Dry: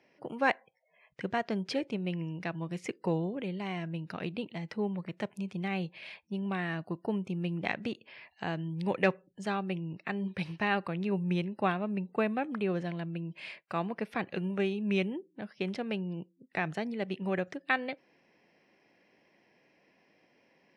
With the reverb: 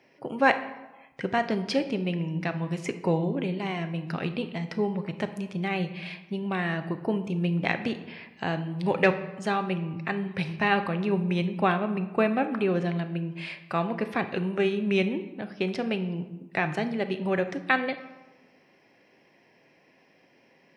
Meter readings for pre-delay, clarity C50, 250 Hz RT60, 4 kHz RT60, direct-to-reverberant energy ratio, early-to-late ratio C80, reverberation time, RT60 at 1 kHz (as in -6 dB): 7 ms, 11.5 dB, 1.3 s, 0.75 s, 8.0 dB, 14.0 dB, 1.1 s, 1.1 s